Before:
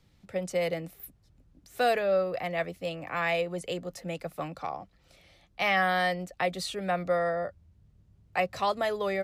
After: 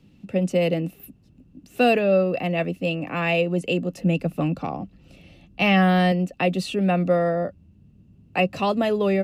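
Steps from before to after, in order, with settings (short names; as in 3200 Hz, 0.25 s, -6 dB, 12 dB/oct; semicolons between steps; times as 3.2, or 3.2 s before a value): 3.98–6.12 low shelf 150 Hz +10 dB; short-mantissa float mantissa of 8-bit; small resonant body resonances 230/2700 Hz, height 18 dB, ringing for 20 ms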